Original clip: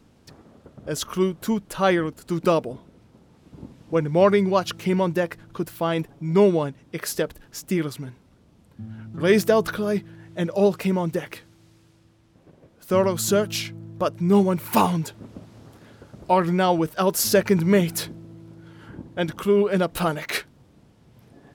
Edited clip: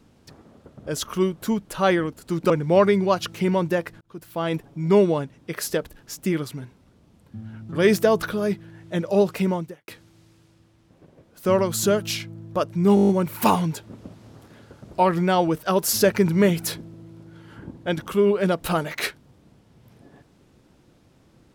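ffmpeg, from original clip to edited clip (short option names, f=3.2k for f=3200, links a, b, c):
-filter_complex "[0:a]asplit=11[a][b][c][d][e][f][g][h][i][j][k];[a]atrim=end=2.502[l];[b]atrim=start=3.948:end=5.46,asetpts=PTS-STARTPTS,afade=t=out:st=1.508:d=0.004:c=hsin[m];[c]atrim=start=5.46:end=11.33,asetpts=PTS-STARTPTS,afade=t=in:d=0.54,afade=t=out:st=5.52:d=0.35:c=qua[n];[d]atrim=start=11.33:end=14.422,asetpts=PTS-STARTPTS,afade=t=in:d=0.004:c=hsin[o];[e]atrim=start=14.398:end=14.422[p];[f]atrim=start=14.398:end=14.422[q];[g]atrim=start=14.398:end=14.422[r];[h]atrim=start=14.398:end=14.422[s];[i]atrim=start=14.398:end=14.422[t];[j]atrim=start=14.398:end=14.422[u];[k]atrim=start=14.398[v];[m][n][o]concat=n=3:v=0:a=1[w];[l][w]acrossfade=d=0.004:c1=hsin:c2=hsin[x];[x][p]acrossfade=d=0.004:c1=hsin:c2=hsin[y];[y][q]acrossfade=d=0.004:c1=hsin:c2=hsin[z];[z][r]acrossfade=d=0.004:c1=hsin:c2=hsin[aa];[aa][s]acrossfade=d=0.004:c1=hsin:c2=hsin[ab];[ab][t]acrossfade=d=0.004:c1=hsin:c2=hsin[ac];[ac][u]acrossfade=d=0.004:c1=hsin:c2=hsin[ad];[ad][v]acrossfade=d=0.004:c1=hsin:c2=hsin"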